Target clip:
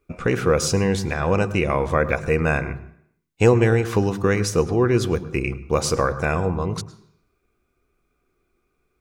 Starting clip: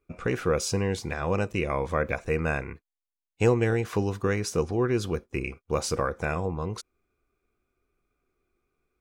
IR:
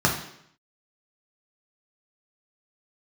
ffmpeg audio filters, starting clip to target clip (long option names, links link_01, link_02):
-filter_complex "[0:a]asplit=2[link_01][link_02];[1:a]atrim=start_sample=2205,adelay=102[link_03];[link_02][link_03]afir=irnorm=-1:irlink=0,volume=-31dB[link_04];[link_01][link_04]amix=inputs=2:normalize=0,volume=6.5dB"